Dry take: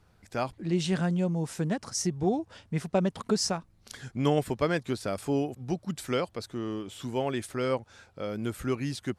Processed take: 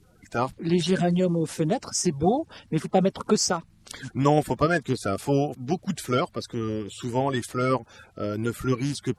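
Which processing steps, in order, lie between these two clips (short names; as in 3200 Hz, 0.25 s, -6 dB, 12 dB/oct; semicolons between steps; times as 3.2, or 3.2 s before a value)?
bin magnitudes rounded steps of 30 dB; gain +5.5 dB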